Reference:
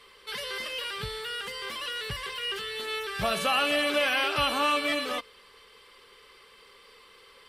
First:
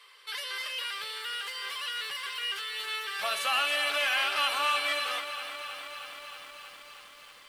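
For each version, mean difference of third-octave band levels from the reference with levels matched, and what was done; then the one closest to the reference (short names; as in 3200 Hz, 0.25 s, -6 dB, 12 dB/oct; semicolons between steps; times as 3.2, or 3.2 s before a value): 7.0 dB: HPF 920 Hz 12 dB/oct; in parallel at -4 dB: overloaded stage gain 24 dB; on the sum: lo-fi delay 0.316 s, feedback 80%, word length 8-bit, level -11 dB; gain -4.5 dB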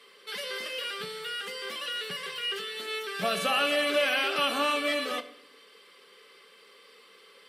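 2.0 dB: Chebyshev high-pass 180 Hz, order 4; bell 950 Hz -8.5 dB 0.3 oct; shoebox room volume 130 m³, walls mixed, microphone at 0.3 m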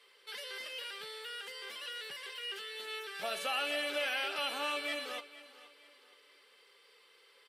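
4.0 dB: Bessel high-pass 400 Hz, order 4; bell 1100 Hz -9.5 dB 0.21 oct; feedback echo 0.472 s, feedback 35%, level -17.5 dB; gain -8 dB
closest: second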